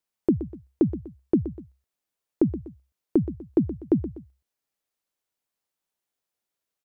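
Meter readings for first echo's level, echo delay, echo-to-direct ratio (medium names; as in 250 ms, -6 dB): -13.0 dB, 123 ms, -12.5 dB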